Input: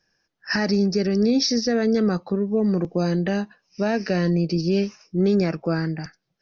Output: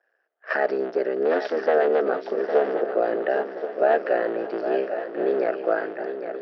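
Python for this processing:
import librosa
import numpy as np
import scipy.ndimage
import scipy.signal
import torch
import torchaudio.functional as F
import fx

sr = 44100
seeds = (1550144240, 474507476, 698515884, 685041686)

y = fx.cycle_switch(x, sr, every=3, mode='muted')
y = fx.cabinet(y, sr, low_hz=420.0, low_slope=24, high_hz=2500.0, hz=(440.0, 660.0, 1000.0, 1500.0, 2300.0), db=(4, 8, -6, 3, -9))
y = fx.echo_swing(y, sr, ms=1078, ratio=3, feedback_pct=39, wet_db=-9)
y = F.gain(torch.from_numpy(y), 3.0).numpy()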